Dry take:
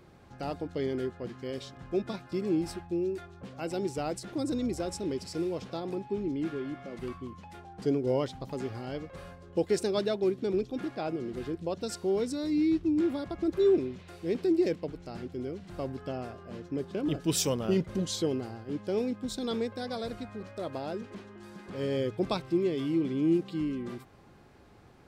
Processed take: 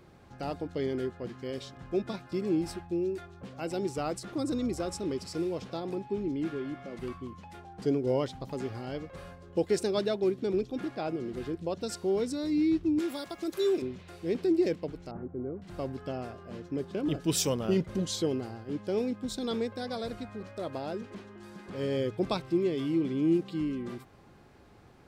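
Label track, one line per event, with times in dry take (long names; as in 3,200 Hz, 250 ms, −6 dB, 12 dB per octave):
3.870000	5.380000	parametric band 1,200 Hz +7.5 dB 0.24 octaves
12.990000	13.820000	RIAA equalisation recording
15.110000	15.620000	low-pass filter 1,300 Hz 24 dB per octave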